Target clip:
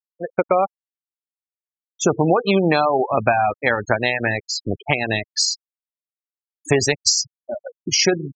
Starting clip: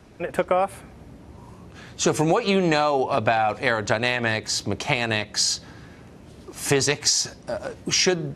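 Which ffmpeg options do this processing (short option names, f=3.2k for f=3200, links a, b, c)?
-af "aeval=exprs='sgn(val(0))*max(abs(val(0))-0.015,0)':c=same,afftfilt=real='re*gte(hypot(re,im),0.0891)':imag='im*gte(hypot(re,im),0.0891)':win_size=1024:overlap=0.75,volume=4.5dB"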